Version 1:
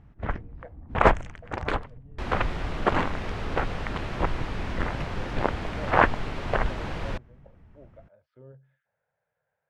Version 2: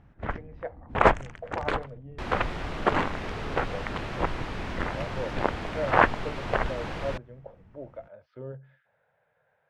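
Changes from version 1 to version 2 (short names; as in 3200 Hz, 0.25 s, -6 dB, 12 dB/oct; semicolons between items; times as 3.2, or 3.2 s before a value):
speech +11.0 dB; master: add low shelf 130 Hz -5.5 dB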